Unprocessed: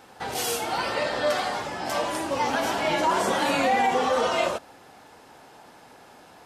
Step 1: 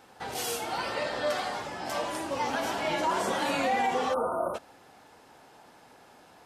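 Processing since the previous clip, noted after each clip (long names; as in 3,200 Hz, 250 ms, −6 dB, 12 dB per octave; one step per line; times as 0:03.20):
time-frequency box erased 0:04.14–0:04.54, 1,500–8,600 Hz
level −5 dB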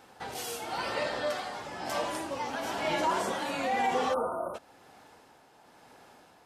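amplitude tremolo 1 Hz, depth 44%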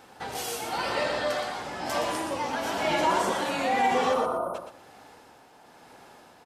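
repeating echo 120 ms, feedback 22%, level −7 dB
level +3.5 dB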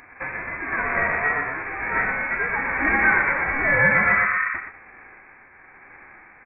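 spectral envelope flattened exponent 0.6
voice inversion scrambler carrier 2,500 Hz
level +6.5 dB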